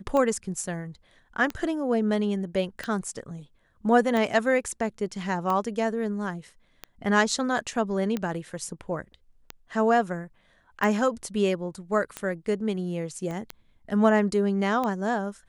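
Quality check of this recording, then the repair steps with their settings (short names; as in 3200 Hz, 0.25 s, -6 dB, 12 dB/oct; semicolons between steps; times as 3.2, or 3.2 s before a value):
tick 45 rpm -16 dBFS
13.31 pop -23 dBFS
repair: de-click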